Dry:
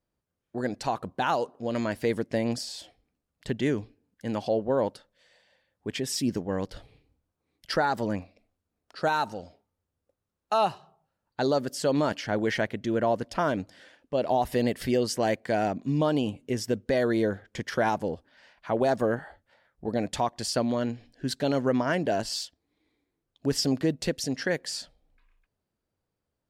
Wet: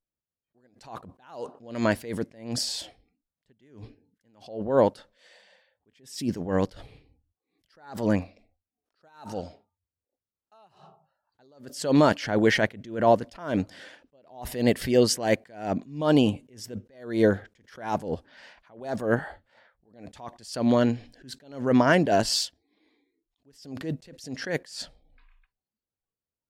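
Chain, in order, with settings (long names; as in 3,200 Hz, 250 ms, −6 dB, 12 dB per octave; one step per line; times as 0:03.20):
noise reduction from a noise print of the clip's start 21 dB
level that may rise only so fast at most 120 dB per second
level +7 dB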